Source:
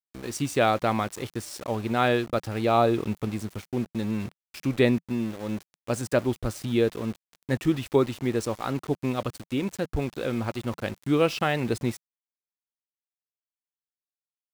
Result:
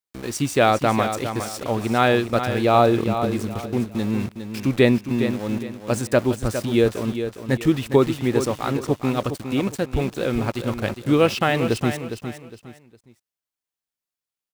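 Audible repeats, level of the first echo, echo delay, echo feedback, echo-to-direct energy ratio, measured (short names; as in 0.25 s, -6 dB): 3, -9.0 dB, 0.409 s, 30%, -8.5 dB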